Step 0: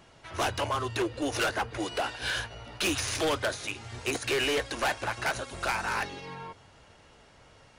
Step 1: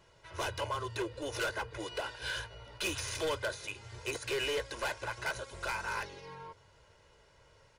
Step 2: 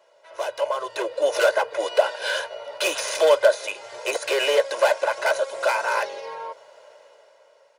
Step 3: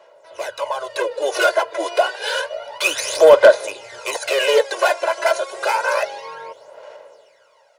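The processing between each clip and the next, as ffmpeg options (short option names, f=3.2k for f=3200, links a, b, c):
-af "aecho=1:1:2:0.6,volume=-8dB"
-af "dynaudnorm=f=160:g=11:m=10dB,highpass=f=590:t=q:w=4.9"
-af "aphaser=in_gain=1:out_gain=1:delay=3:decay=0.61:speed=0.29:type=sinusoidal,apsyclip=3.5dB,volume=-1.5dB"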